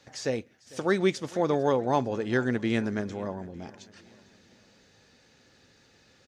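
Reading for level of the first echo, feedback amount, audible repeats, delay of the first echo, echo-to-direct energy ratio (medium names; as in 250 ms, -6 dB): -21.5 dB, 51%, 3, 450 ms, -20.0 dB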